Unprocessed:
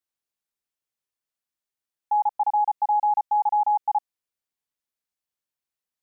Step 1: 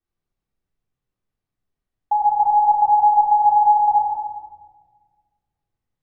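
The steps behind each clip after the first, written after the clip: tilt -4 dB/oct; shoebox room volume 1600 m³, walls mixed, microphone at 3.6 m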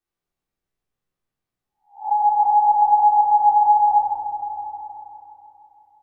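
spectral swells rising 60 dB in 0.34 s; low shelf 190 Hz -11.5 dB; repeats that get brighter 0.163 s, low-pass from 200 Hz, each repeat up 1 oct, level -3 dB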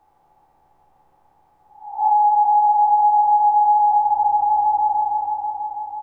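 per-bin compression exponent 0.6; compressor 6:1, threshold -22 dBFS, peak gain reduction 11.5 dB; doubler 13 ms -5 dB; gain +5.5 dB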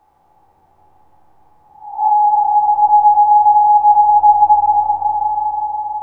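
repeats that get brighter 0.104 s, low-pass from 200 Hz, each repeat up 1 oct, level 0 dB; gain +3.5 dB

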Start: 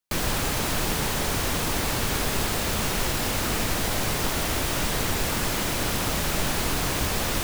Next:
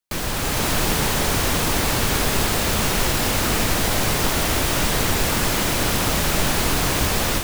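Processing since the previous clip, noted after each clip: AGC gain up to 5.5 dB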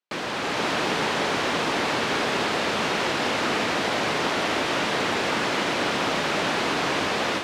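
BPF 260–3700 Hz

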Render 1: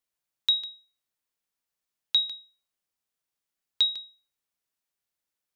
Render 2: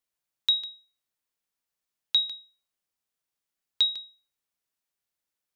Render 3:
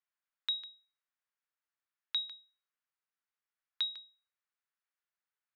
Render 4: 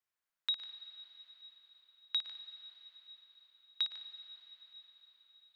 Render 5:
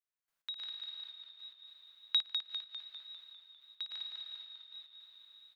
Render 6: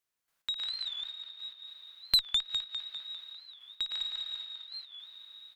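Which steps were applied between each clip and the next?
nothing audible
band-pass 1500 Hz, Q 1.5
flutter echo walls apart 9.7 m, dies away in 0.42 s; on a send at -10 dB: reverb RT60 5.8 s, pre-delay 97 ms
step gate "..x.xxxx" 108 bpm -12 dB; on a send: frequency-shifting echo 0.2 s, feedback 56%, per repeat -39 Hz, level -6 dB; on the sum: gain +4 dB
tube stage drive 25 dB, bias 0.3; record warp 45 rpm, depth 160 cents; gain +8.5 dB

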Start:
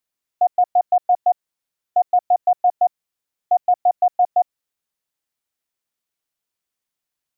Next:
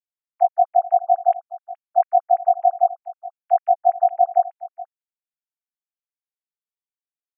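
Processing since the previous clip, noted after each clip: sine-wave speech; echo 0.422 s -17 dB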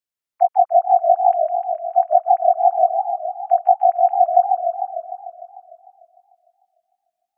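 in parallel at -1.5 dB: compressor, threshold -22 dBFS, peak gain reduction 11 dB; on the sum: warbling echo 0.15 s, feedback 69%, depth 182 cents, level -6 dB; gain -1 dB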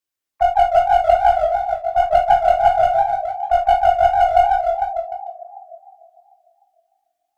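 in parallel at -4 dB: one-sided clip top -23.5 dBFS, bottom -7.5 dBFS; on the sum: reverb, pre-delay 3 ms, DRR 0 dB; gain -2.5 dB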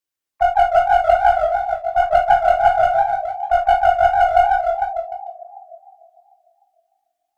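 dynamic EQ 1400 Hz, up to +7 dB, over -33 dBFS, Q 2; gain -1 dB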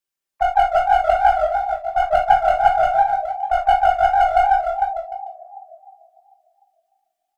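comb 5.1 ms, depth 44%; gain -1 dB

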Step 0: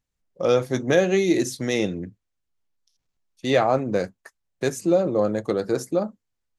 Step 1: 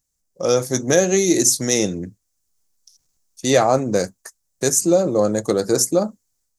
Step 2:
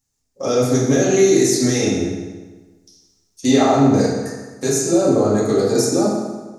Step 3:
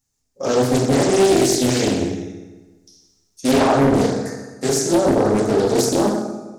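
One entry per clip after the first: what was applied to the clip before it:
resonant high shelf 4400 Hz +12.5 dB, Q 1.5; AGC gain up to 6 dB
limiter -12.5 dBFS, peak gain reduction 10.5 dB; reverb RT60 1.3 s, pre-delay 4 ms, DRR -9 dB; gain -3 dB
overloaded stage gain 8.5 dB; Doppler distortion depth 0.82 ms

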